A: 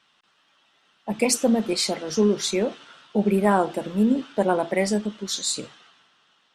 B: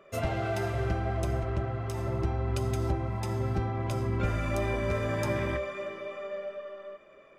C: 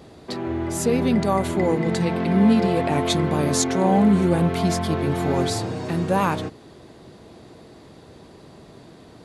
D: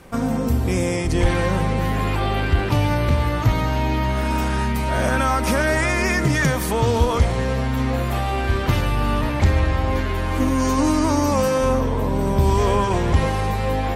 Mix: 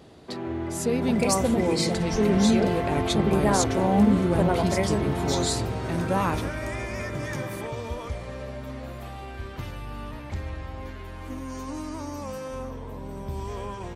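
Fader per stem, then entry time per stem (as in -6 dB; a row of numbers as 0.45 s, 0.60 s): -4.5 dB, -4.5 dB, -4.5 dB, -16.0 dB; 0.00 s, 2.10 s, 0.00 s, 0.90 s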